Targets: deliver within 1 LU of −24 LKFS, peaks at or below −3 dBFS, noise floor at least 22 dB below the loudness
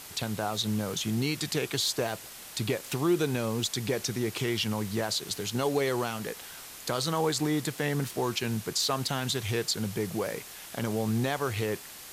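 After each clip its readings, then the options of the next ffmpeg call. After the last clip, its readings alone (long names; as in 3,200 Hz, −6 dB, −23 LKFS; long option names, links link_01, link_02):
background noise floor −45 dBFS; target noise floor −52 dBFS; integrated loudness −30.0 LKFS; sample peak −15.0 dBFS; target loudness −24.0 LKFS
→ -af "afftdn=noise_reduction=7:noise_floor=-45"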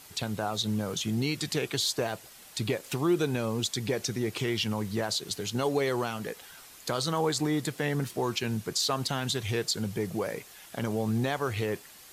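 background noise floor −51 dBFS; target noise floor −53 dBFS
→ -af "afftdn=noise_reduction=6:noise_floor=-51"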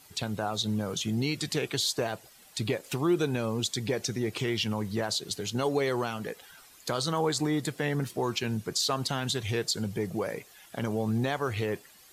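background noise floor −56 dBFS; integrated loudness −30.5 LKFS; sample peak −15.0 dBFS; target loudness −24.0 LKFS
→ -af "volume=6.5dB"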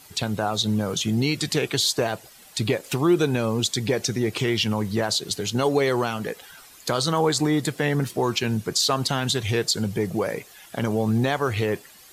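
integrated loudness −24.0 LKFS; sample peak −8.5 dBFS; background noise floor −49 dBFS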